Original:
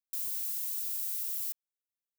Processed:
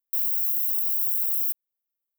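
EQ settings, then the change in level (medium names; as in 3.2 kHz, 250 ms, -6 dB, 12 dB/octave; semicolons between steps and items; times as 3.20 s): FFT filter 410 Hz 0 dB, 860 Hz -3 dB, 3.7 kHz -17 dB, 5.6 kHz -16 dB, 15 kHz +11 dB; 0.0 dB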